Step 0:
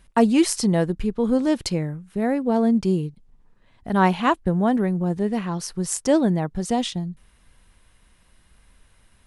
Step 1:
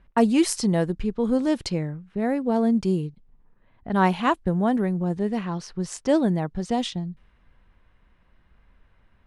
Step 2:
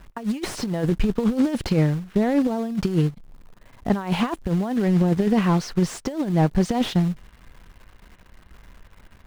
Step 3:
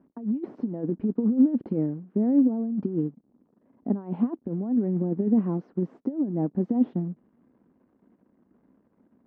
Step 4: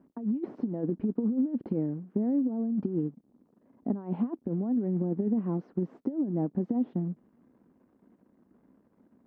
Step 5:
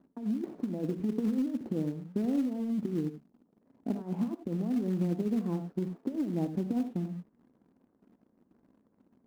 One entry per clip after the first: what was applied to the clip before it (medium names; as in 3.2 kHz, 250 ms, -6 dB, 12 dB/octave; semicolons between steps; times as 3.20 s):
level-controlled noise filter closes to 2 kHz, open at -16 dBFS; trim -2 dB
in parallel at -6.5 dB: companded quantiser 4-bit; on the sum: compressor with a negative ratio -22 dBFS, ratio -0.5; slew-rate limiter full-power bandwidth 85 Hz; trim +2.5 dB
ladder band-pass 290 Hz, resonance 55%; trim +5.5 dB
compression 5:1, threshold -25 dBFS, peak gain reduction 10 dB
reverberation, pre-delay 3 ms, DRR 8 dB; in parallel at -11 dB: companded quantiser 4-bit; on the sum: tape noise reduction on one side only decoder only; trim -5 dB